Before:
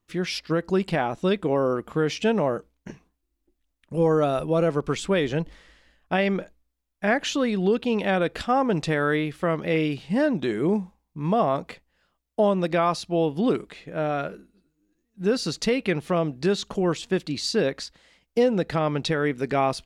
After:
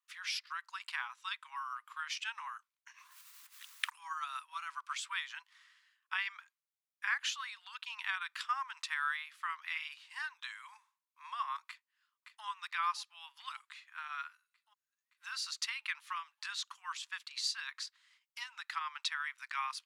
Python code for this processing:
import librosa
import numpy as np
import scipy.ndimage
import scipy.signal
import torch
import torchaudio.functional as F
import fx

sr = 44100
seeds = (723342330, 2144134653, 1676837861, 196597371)

y = fx.pre_swell(x, sr, db_per_s=20.0, at=(2.88, 3.99))
y = fx.echo_throw(y, sr, start_s=11.65, length_s=0.8, ms=570, feedback_pct=65, wet_db=-9.5)
y = scipy.signal.sosfilt(scipy.signal.butter(12, 990.0, 'highpass', fs=sr, output='sos'), y)
y = fx.transient(y, sr, attack_db=2, sustain_db=-3)
y = y * 10.0 ** (-7.5 / 20.0)